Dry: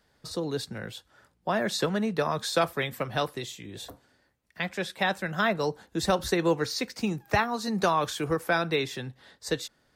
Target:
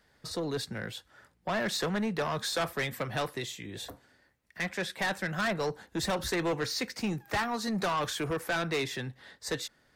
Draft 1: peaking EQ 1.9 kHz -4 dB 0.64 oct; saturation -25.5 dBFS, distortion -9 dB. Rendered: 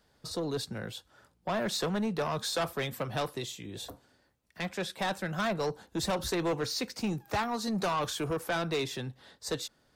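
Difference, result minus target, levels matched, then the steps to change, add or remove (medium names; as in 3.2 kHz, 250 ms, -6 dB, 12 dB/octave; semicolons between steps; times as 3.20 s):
2 kHz band -3.5 dB
change: peaking EQ 1.9 kHz +4.5 dB 0.64 oct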